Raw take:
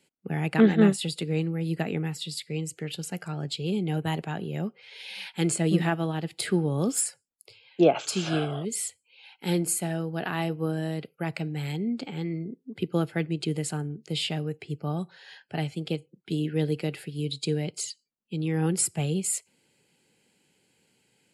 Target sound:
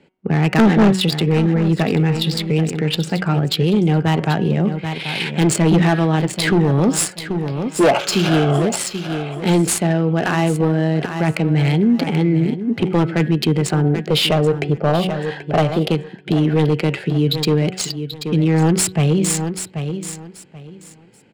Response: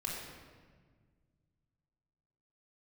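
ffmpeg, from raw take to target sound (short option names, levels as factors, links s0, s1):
-filter_complex "[0:a]bandreject=f=186.2:t=h:w=4,bandreject=f=372.4:t=h:w=4,bandreject=f=558.6:t=h:w=4,bandreject=f=744.8:t=h:w=4,bandreject=f=931:t=h:w=4,bandreject=f=1117.2:t=h:w=4,bandreject=f=1303.4:t=h:w=4,bandreject=f=1489.6:t=h:w=4,bandreject=f=1675.8:t=h:w=4,bandreject=f=1862:t=h:w=4,bandreject=f=2048.2:t=h:w=4,bandreject=f=2234.4:t=h:w=4,bandreject=f=2420.6:t=h:w=4,bandreject=f=2606.8:t=h:w=4,bandreject=f=2793:t=h:w=4,bandreject=f=2979.2:t=h:w=4,bandreject=f=3165.4:t=h:w=4,bandreject=f=3351.6:t=h:w=4,bandreject=f=3537.8:t=h:w=4,asettb=1/sr,asplit=3[s0][s1][s2];[s0]atrim=end=13.844[s3];[s1]atrim=start=13.84:end=15.89,asetpts=PTS-STARTPTS,afade=t=in:d=0.004:c=qsin,afade=t=out:st=2.046:d=0.004:c=qsin,equalizer=f=590:w=1.2:g=11[s4];[s2]atrim=start=15.886[s5];[s3][s4]acrossfade=d=0.004:c1=hsin:c2=qsin[s6];[s6][s5]acrossfade=d=0.004:c1=qsin:c2=hsin,asoftclip=type=hard:threshold=0.0841,adynamicsmooth=sensitivity=6:basefreq=2000,aecho=1:1:783|1566|2349:0.211|0.0465|0.0102,alimiter=level_in=20:limit=0.891:release=50:level=0:latency=1,volume=0.398"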